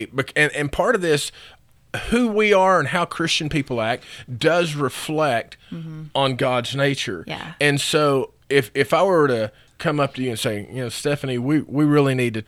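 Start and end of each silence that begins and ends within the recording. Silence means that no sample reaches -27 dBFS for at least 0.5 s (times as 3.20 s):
1.29–1.94 s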